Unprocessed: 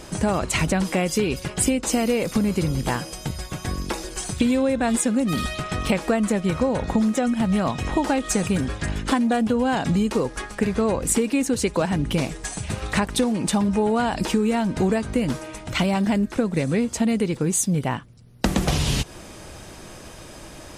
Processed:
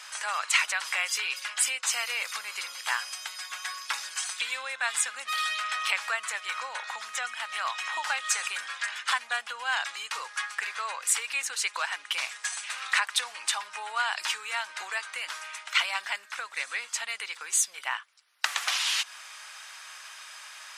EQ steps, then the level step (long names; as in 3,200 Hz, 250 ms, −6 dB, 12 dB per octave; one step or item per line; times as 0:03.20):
high-pass filter 1,200 Hz 24 dB per octave
high-shelf EQ 7,400 Hz −10 dB
+3.5 dB